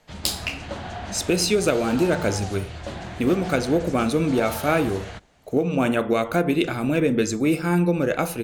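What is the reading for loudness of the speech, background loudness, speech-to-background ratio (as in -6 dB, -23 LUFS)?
-23.0 LUFS, -35.0 LUFS, 12.0 dB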